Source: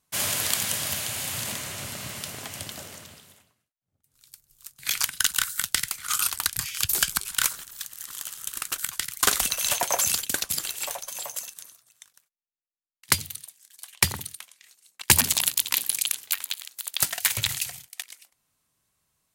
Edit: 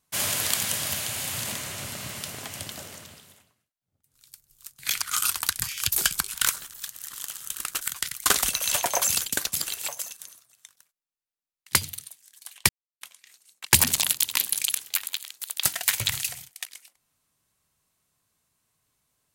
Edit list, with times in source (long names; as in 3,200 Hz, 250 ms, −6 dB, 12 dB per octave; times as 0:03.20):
0:05.02–0:05.99: remove
0:10.85–0:11.25: remove
0:14.06–0:14.38: silence